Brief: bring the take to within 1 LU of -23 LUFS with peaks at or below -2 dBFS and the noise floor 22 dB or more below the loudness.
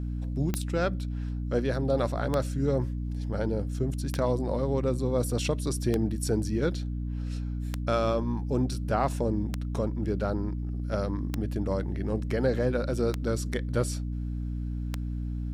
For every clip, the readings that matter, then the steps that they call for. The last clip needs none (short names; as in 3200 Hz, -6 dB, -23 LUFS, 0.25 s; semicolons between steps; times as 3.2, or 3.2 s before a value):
clicks 9; hum 60 Hz; harmonics up to 300 Hz; hum level -29 dBFS; loudness -29.5 LUFS; peak -12.0 dBFS; loudness target -23.0 LUFS
-> de-click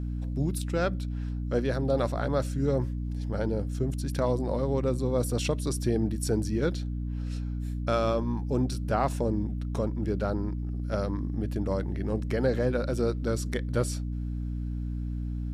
clicks 0; hum 60 Hz; harmonics up to 300 Hz; hum level -29 dBFS
-> de-hum 60 Hz, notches 5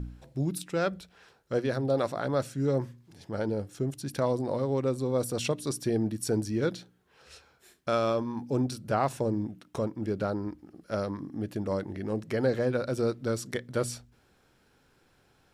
hum none; loudness -31.0 LUFS; peak -13.5 dBFS; loudness target -23.0 LUFS
-> gain +8 dB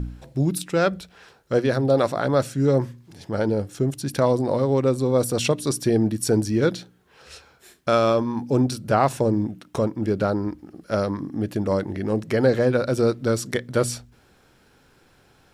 loudness -23.0 LUFS; peak -5.5 dBFS; noise floor -58 dBFS